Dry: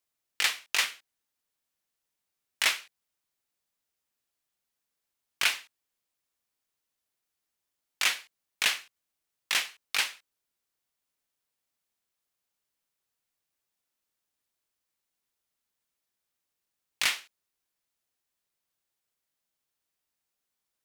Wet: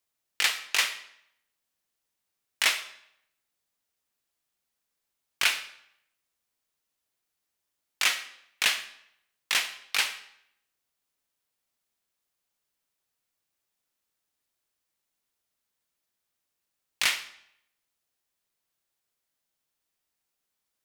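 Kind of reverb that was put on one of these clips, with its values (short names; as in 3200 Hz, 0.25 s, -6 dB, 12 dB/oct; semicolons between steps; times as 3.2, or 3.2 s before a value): digital reverb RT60 0.73 s, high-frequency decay 0.9×, pre-delay 10 ms, DRR 11.5 dB; gain +1.5 dB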